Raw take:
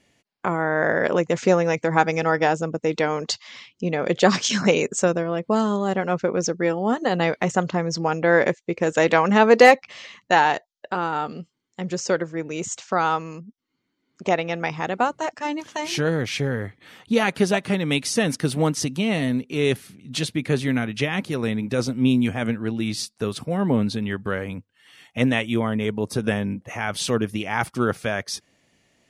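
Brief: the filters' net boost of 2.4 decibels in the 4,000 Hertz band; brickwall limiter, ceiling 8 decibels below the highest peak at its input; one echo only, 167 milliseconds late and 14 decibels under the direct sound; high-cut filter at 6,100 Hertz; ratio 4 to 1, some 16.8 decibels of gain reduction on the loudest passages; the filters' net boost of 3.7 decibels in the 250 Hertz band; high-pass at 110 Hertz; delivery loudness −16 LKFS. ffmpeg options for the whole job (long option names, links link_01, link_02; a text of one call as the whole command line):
ffmpeg -i in.wav -af "highpass=110,lowpass=6100,equalizer=frequency=250:width_type=o:gain=5,equalizer=frequency=4000:width_type=o:gain=4,acompressor=threshold=-27dB:ratio=4,alimiter=limit=-20dB:level=0:latency=1,aecho=1:1:167:0.2,volume=15.5dB" out.wav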